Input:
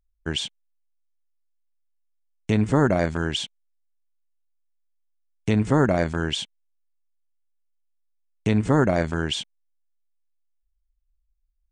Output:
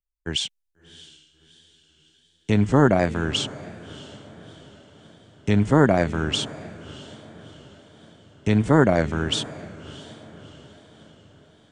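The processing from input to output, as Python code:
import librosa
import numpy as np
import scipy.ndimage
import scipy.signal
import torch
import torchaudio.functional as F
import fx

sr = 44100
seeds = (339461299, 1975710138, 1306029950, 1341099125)

y = fx.echo_diffused(x, sr, ms=654, feedback_pct=62, wet_db=-13.0)
y = fx.vibrato(y, sr, rate_hz=1.4, depth_cents=69.0)
y = fx.band_widen(y, sr, depth_pct=40)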